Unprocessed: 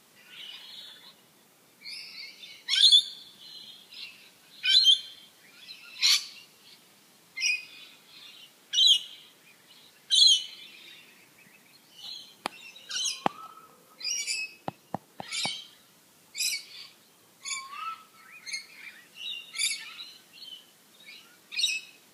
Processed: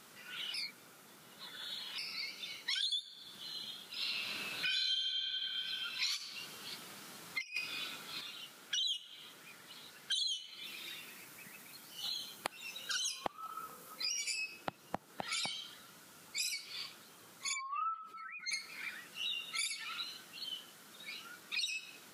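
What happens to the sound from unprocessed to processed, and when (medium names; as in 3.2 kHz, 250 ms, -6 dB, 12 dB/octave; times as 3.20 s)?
0.54–1.98 s: reverse
3.96–5.01 s: reverb throw, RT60 2.4 s, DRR -10 dB
6.20–8.21 s: compressor with a negative ratio -36 dBFS, ratio -0.5
10.64–14.05 s: treble shelf 8.8 kHz +8.5 dB
17.53–18.51 s: spectral contrast enhancement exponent 2
whole clip: peaking EQ 1.4 kHz +8 dB 0.35 oct; compression 8:1, threshold -36 dBFS; trim +1 dB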